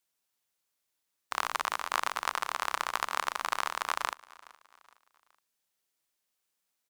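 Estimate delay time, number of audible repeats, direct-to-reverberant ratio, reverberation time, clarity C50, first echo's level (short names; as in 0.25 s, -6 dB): 0.419 s, 2, none, none, none, -22.0 dB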